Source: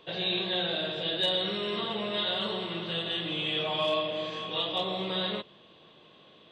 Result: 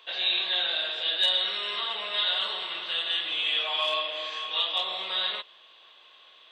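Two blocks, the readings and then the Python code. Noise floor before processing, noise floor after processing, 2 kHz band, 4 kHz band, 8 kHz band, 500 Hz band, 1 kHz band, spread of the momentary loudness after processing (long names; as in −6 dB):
−57 dBFS, −55 dBFS, +4.5 dB, +5.0 dB, can't be measured, −7.0 dB, +0.5 dB, 6 LU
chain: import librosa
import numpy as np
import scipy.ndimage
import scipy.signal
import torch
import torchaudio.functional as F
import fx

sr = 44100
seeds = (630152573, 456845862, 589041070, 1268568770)

y = scipy.signal.sosfilt(scipy.signal.butter(2, 1100.0, 'highpass', fs=sr, output='sos'), x)
y = F.gain(torch.from_numpy(y), 5.0).numpy()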